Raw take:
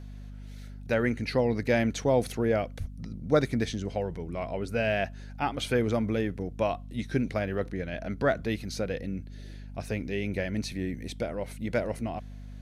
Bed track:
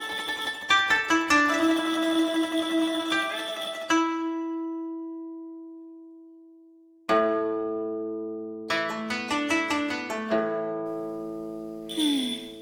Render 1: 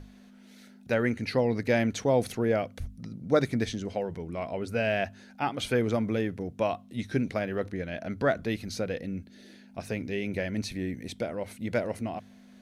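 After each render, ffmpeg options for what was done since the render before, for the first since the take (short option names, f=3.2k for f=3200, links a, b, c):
-af "bandreject=f=50:t=h:w=6,bandreject=f=100:t=h:w=6,bandreject=f=150:t=h:w=6"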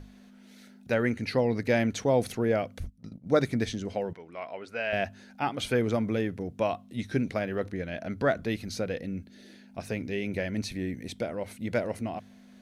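-filter_complex "[0:a]asettb=1/sr,asplit=3[a][b][c];[a]atrim=end=2.844[d];[b]atrim=start=2.84:end=3.33,asetpts=PTS-STARTPTS,afade=t=in:d=0.004:c=qsin,afade=t=out:st=0.486:d=0.004:c=qsin,agate=range=-15dB:threshold=-40dB:ratio=16:release=100:detection=peak[e];[c]atrim=start=3.326[f];[d][e]acrossfade=d=0.004:c1=hsin:c2=qsin[g];[g][f]acrossfade=d=0.004:c1=qsin:c2=hsin,asettb=1/sr,asplit=3[h][i][j];[h]atrim=end=4.134[k];[i]atrim=start=4.13:end=4.93,asetpts=PTS-STARTPTS,afade=t=in:d=0.004:c=qsin,afade=t=out:st=0.796:d=0.004:c=qsin,bandpass=f=1.7k:t=q:w=0.57[l];[j]atrim=start=4.926[m];[k][l]acrossfade=d=0.004:c1=hsin:c2=qsin[n];[n][m]acrossfade=d=0.004:c1=qsin:c2=hsin"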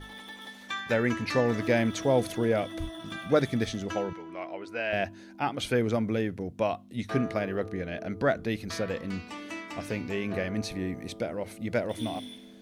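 -filter_complex "[1:a]volume=-14dB[a];[0:a][a]amix=inputs=2:normalize=0"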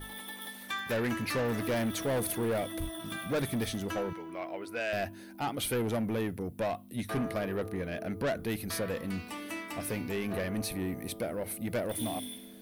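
-af "aexciter=amount=7.9:drive=4.2:freq=9.2k,asoftclip=type=tanh:threshold=-26.5dB"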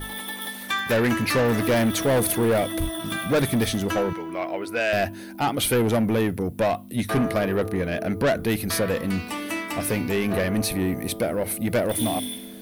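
-af "volume=10dB"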